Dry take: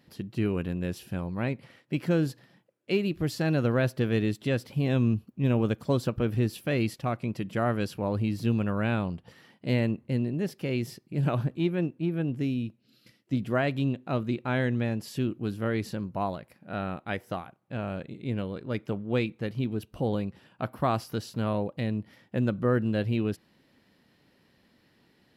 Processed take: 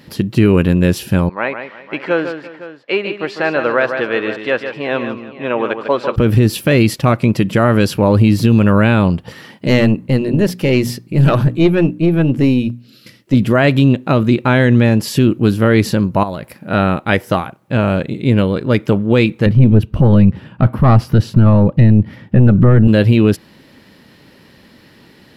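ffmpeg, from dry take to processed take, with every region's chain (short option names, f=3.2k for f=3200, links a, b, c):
-filter_complex "[0:a]asettb=1/sr,asplit=3[a][b][c];[a]atrim=end=1.294[d];[b]atrim=start=1.29:end=6.16,asetpts=PTS-STARTPTS,afade=t=in:d=0.004:c=qsin,afade=t=out:st=4.866:d=0.004:c=qsin,highpass=670,lowpass=2.1k,aecho=1:1:149|341|508:0.376|0.106|0.158,atrim=end_sample=214767[e];[c]atrim=start=6.156[f];[d][e]acrossfade=d=0.004:c1=hsin:c2=qsin[g];[g][f]acrossfade=d=0.004:c1=qsin:c2=hsin,asettb=1/sr,asplit=3[h][i][j];[h]atrim=end=9.674[k];[i]atrim=start=9.67:end=13.34,asetpts=PTS-STARTPTS,afade=t=in:d=0.004:c=qsin,afade=t=out:st=3.666:d=0.004:c=qsin,bandreject=f=60:t=h:w=6,bandreject=f=120:t=h:w=6,bandreject=f=180:t=h:w=6,bandreject=f=240:t=h:w=6,bandreject=f=300:t=h:w=6,aeval=exprs='(tanh(11.2*val(0)+0.4)-tanh(0.4))/11.2':c=same[l];[j]atrim=start=13.336[m];[k][l]acrossfade=d=0.004:c1=hsin:c2=qsin[n];[n][m]acrossfade=d=0.004:c1=qsin:c2=hsin,asettb=1/sr,asplit=3[o][p][q];[o]atrim=end=16.234[r];[p]atrim=start=16.23:end=16.71,asetpts=PTS-STARTPTS,afade=t=in:d=0.004:c=qsin,afade=t=out:st=0.476:d=0.004:c=qsin,highshelf=f=8.7k:g=5,acompressor=threshold=-40dB:ratio=3:attack=3.2:release=140:knee=1:detection=peak[s];[q]atrim=start=16.706[t];[r][s]acrossfade=d=0.004:c1=hsin:c2=qsin[u];[u][t]acrossfade=d=0.004:c1=qsin:c2=hsin,asettb=1/sr,asplit=3[v][w][x];[v]atrim=end=19.464[y];[w]atrim=start=19.46:end=22.88,asetpts=PTS-STARTPTS,afade=t=in:d=0.004:c=qsin,afade=t=out:st=3.416:d=0.004:c=qsin,bass=f=250:g=12,treble=f=4k:g=-11,aeval=exprs='(tanh(5.62*val(0)+0.5)-tanh(0.5))/5.62':c=same[z];[x]atrim=start=22.876[aa];[y][z]acrossfade=d=0.004:c1=hsin:c2=qsin[ab];[ab][aa]acrossfade=d=0.004:c1=qsin:c2=hsin,bandreject=f=720:w=12,alimiter=level_in=20dB:limit=-1dB:release=50:level=0:latency=1,volume=-1dB"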